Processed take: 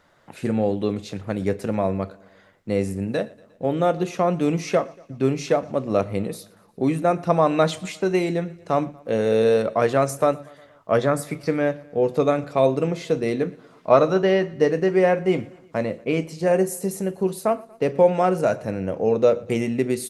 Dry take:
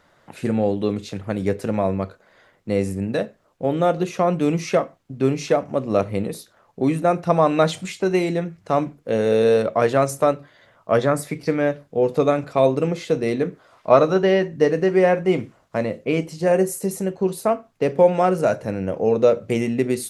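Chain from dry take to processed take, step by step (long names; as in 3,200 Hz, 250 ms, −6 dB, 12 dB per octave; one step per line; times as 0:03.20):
repeating echo 118 ms, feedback 59%, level −23.5 dB
level −1.5 dB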